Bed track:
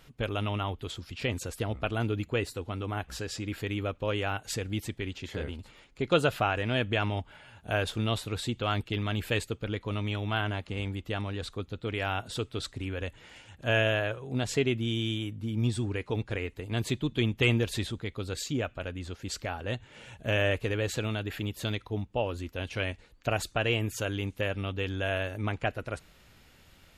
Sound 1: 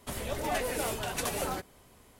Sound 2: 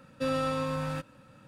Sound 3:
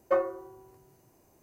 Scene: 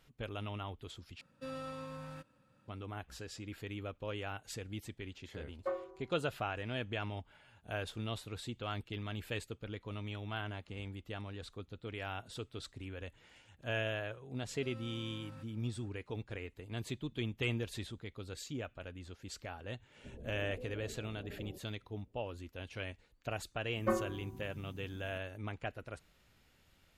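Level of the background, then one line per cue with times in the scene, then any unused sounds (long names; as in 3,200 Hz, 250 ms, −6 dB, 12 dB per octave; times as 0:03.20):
bed track −10.5 dB
0:01.21: overwrite with 2 −14 dB
0:05.55: mix in 3 −11.5 dB + high-frequency loss of the air 120 metres
0:14.42: mix in 2 −12.5 dB + downward compressor, threshold −37 dBFS
0:19.97: mix in 1 −11 dB + inverse Chebyshev low-pass filter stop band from 1,700 Hz, stop band 60 dB
0:23.76: mix in 3 −3 dB + low shelf with overshoot 320 Hz +13 dB, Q 3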